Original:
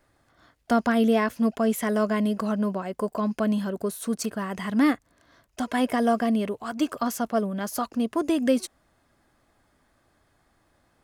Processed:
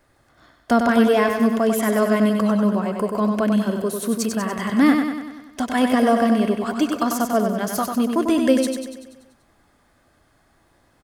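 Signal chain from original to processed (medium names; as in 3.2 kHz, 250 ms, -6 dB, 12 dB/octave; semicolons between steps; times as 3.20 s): feedback delay 96 ms, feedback 57%, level -5.5 dB; trim +4.5 dB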